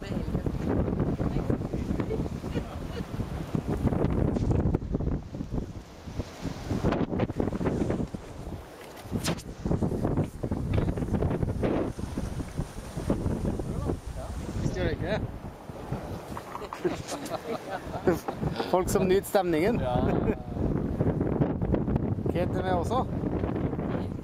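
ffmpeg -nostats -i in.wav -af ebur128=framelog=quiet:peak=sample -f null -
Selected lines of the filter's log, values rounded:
Integrated loudness:
  I:         -30.0 LUFS
  Threshold: -40.2 LUFS
Loudness range:
  LRA:         6.2 LU
  Threshold: -50.3 LUFS
  LRA low:   -33.4 LUFS
  LRA high:  -27.2 LUFS
Sample peak:
  Peak:       -8.1 dBFS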